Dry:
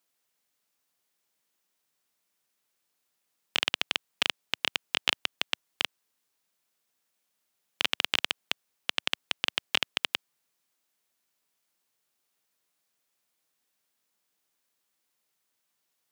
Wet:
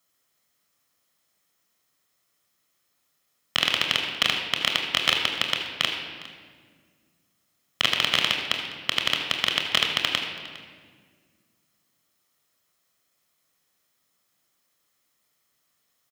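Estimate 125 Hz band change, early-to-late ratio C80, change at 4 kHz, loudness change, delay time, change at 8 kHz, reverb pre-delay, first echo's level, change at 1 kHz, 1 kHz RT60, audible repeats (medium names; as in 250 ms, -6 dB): +11.0 dB, 5.5 dB, +7.0 dB, +6.0 dB, 407 ms, +6.0 dB, 25 ms, -19.5 dB, +7.5 dB, 1.5 s, 1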